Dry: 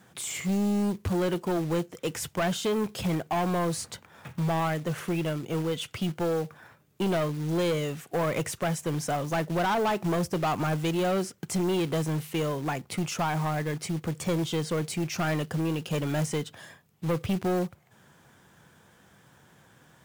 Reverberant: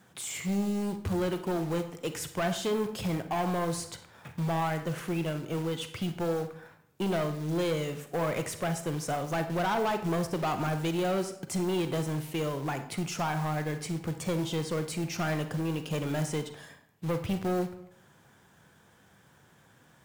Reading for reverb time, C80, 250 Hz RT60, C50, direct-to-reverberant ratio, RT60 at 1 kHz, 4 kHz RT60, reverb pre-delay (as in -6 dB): 0.70 s, 13.5 dB, 0.80 s, 10.0 dB, 8.0 dB, 0.70 s, 0.50 s, 36 ms